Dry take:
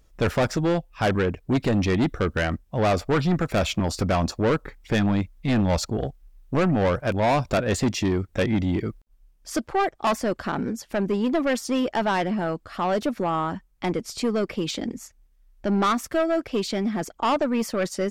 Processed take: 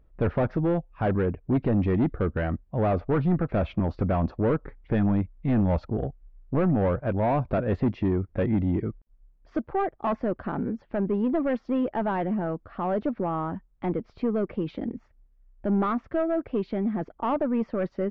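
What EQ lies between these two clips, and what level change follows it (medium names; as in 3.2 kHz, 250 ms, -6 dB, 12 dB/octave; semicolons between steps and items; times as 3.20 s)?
distance through air 210 m; tape spacing loss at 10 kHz 42 dB; 0.0 dB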